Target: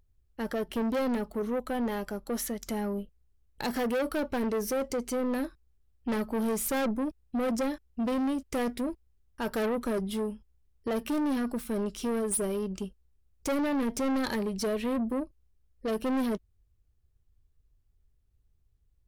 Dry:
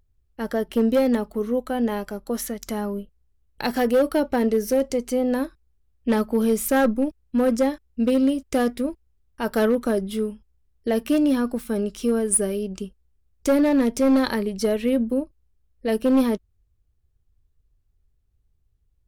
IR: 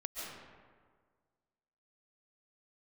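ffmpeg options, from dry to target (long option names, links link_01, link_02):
-af "asoftclip=type=tanh:threshold=-24dB,volume=-2dB"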